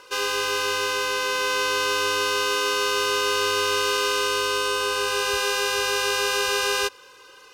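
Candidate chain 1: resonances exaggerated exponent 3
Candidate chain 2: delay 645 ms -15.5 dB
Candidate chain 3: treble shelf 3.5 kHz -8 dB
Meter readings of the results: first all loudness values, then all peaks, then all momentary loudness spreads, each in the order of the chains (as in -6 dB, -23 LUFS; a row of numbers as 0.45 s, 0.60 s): -24.0 LUFS, -22.5 LUFS, -24.5 LUFS; -13.0 dBFS, -10.0 dBFS, -12.0 dBFS; 2 LU, 2 LU, 2 LU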